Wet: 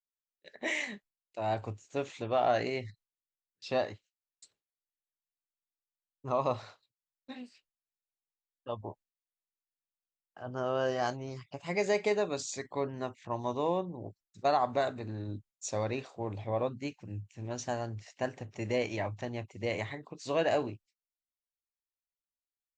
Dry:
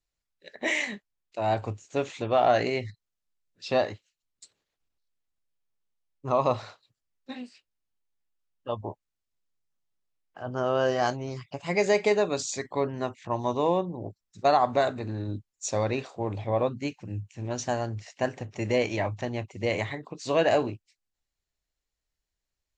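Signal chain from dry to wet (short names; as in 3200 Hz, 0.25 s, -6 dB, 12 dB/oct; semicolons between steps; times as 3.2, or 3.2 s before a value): gate with hold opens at -50 dBFS; gain -6 dB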